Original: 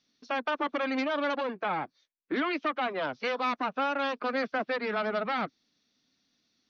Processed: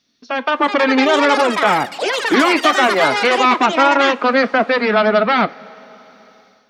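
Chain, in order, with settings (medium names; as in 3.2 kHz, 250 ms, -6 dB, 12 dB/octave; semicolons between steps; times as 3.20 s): two-slope reverb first 0.21 s, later 4.4 s, from -21 dB, DRR 12 dB; level rider gain up to 7.5 dB; ever faster or slower copies 478 ms, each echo +7 st, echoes 3, each echo -6 dB; trim +8 dB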